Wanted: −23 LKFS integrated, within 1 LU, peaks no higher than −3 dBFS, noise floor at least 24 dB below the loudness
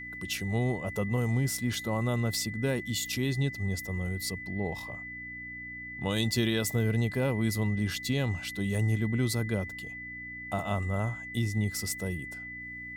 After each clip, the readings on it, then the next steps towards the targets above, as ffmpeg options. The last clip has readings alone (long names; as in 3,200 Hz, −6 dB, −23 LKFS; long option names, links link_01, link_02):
mains hum 60 Hz; hum harmonics up to 300 Hz; level of the hum −50 dBFS; interfering tone 2,000 Hz; level of the tone −39 dBFS; integrated loudness −31.0 LKFS; sample peak −16.0 dBFS; target loudness −23.0 LKFS
→ -af "bandreject=frequency=60:width_type=h:width=4,bandreject=frequency=120:width_type=h:width=4,bandreject=frequency=180:width_type=h:width=4,bandreject=frequency=240:width_type=h:width=4,bandreject=frequency=300:width_type=h:width=4"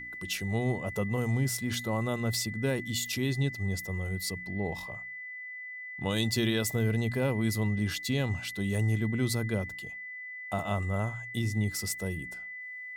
mains hum none found; interfering tone 2,000 Hz; level of the tone −39 dBFS
→ -af "bandreject=frequency=2000:width=30"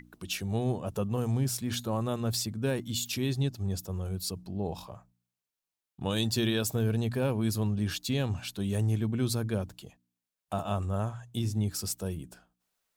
interfering tone none found; integrated loudness −31.5 LKFS; sample peak −17.0 dBFS; target loudness −23.0 LKFS
→ -af "volume=8.5dB"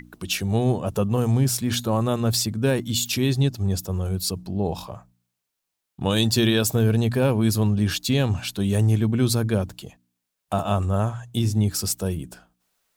integrated loudness −23.0 LKFS; sample peak −8.5 dBFS; background noise floor −81 dBFS